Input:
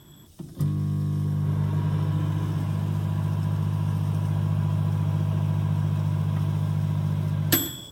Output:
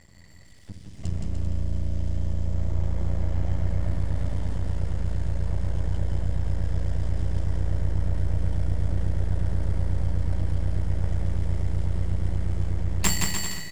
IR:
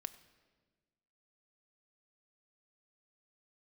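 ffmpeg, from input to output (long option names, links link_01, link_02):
-af "asetrate=25442,aresample=44100,aeval=exprs='max(val(0),0)':channel_layout=same,aecho=1:1:170|297.5|393.1|464.8|518.6:0.631|0.398|0.251|0.158|0.1"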